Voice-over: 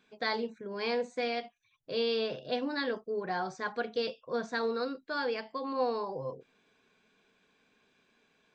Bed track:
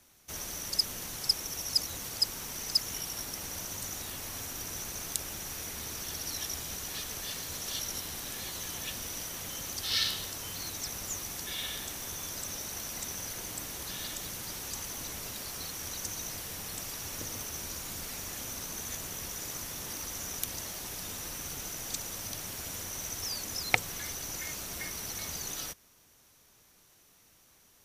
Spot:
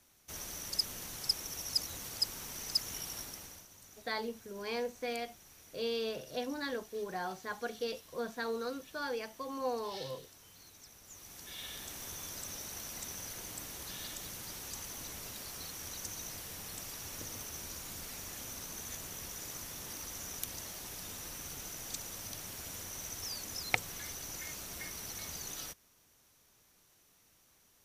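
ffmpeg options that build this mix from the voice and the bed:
-filter_complex "[0:a]adelay=3850,volume=-5dB[a];[1:a]volume=9dB,afade=t=out:st=3.15:d=0.52:silence=0.199526,afade=t=in:st=11.04:d=0.98:silence=0.211349[b];[a][b]amix=inputs=2:normalize=0"

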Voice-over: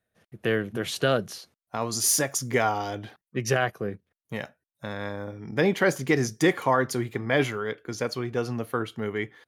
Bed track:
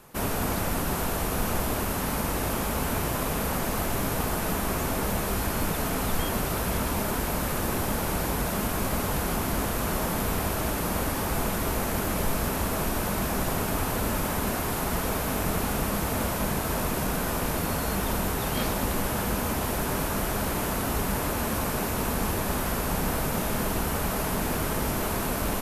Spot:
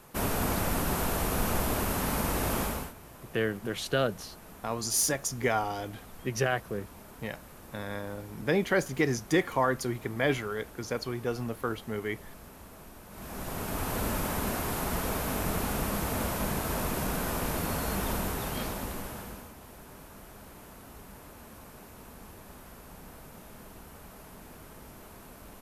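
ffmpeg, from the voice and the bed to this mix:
-filter_complex "[0:a]adelay=2900,volume=-4dB[a];[1:a]volume=16.5dB,afade=t=out:st=2.61:d=0.32:silence=0.1,afade=t=in:st=13.09:d=0.91:silence=0.125893,afade=t=out:st=18.1:d=1.42:silence=0.133352[b];[a][b]amix=inputs=2:normalize=0"

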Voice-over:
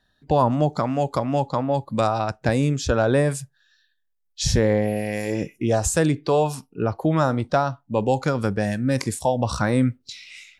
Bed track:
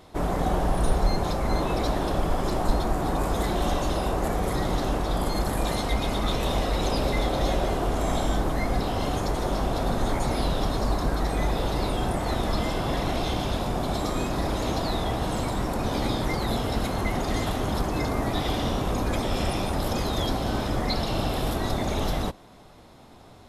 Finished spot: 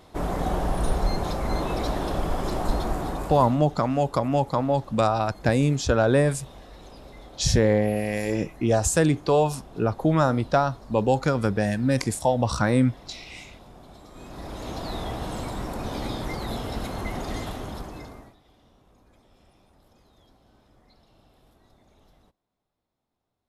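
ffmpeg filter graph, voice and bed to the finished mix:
-filter_complex "[0:a]adelay=3000,volume=-0.5dB[a];[1:a]volume=14.5dB,afade=t=out:st=2.92:d=0.69:silence=0.112202,afade=t=in:st=14.1:d=0.89:silence=0.158489,afade=t=out:st=17.31:d=1.05:silence=0.0375837[b];[a][b]amix=inputs=2:normalize=0"

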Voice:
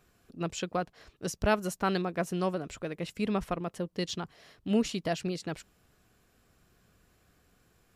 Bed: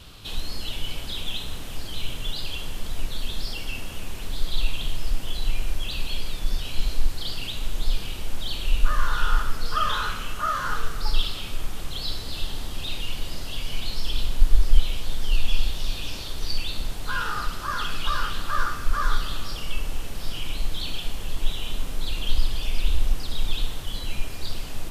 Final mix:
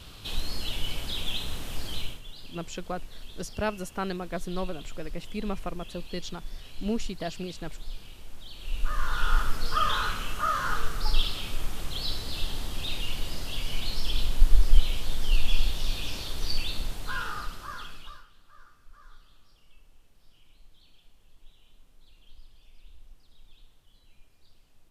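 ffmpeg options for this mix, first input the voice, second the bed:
-filter_complex "[0:a]adelay=2150,volume=-3dB[a];[1:a]volume=12dB,afade=t=out:st=1.94:d=0.27:silence=0.211349,afade=t=in:st=8.55:d=0.9:silence=0.223872,afade=t=out:st=16.58:d=1.67:silence=0.0398107[b];[a][b]amix=inputs=2:normalize=0"

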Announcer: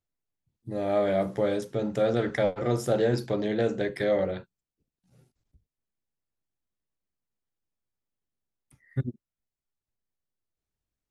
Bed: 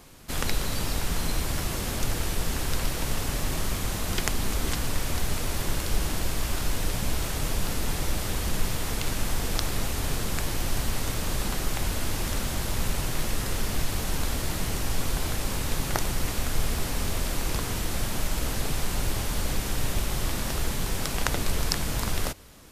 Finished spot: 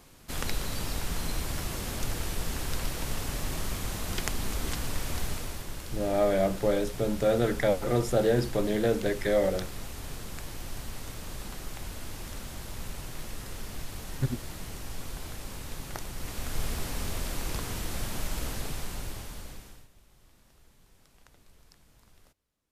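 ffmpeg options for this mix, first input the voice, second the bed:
-filter_complex "[0:a]adelay=5250,volume=0dB[a];[1:a]volume=1.5dB,afade=t=out:st=5.24:d=0.41:silence=0.473151,afade=t=in:st=16.12:d=0.52:silence=0.501187,afade=t=out:st=18.41:d=1.47:silence=0.0421697[b];[a][b]amix=inputs=2:normalize=0"

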